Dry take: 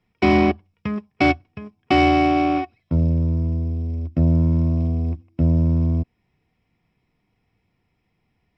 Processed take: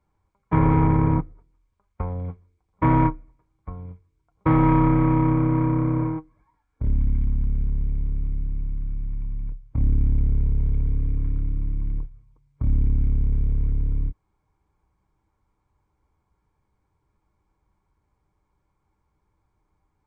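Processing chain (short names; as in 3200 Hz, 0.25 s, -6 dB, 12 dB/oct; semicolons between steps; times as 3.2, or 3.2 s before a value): dynamic EQ 220 Hz, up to -4 dB, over -32 dBFS, Q 1.4; speed mistake 78 rpm record played at 33 rpm; gain -1 dB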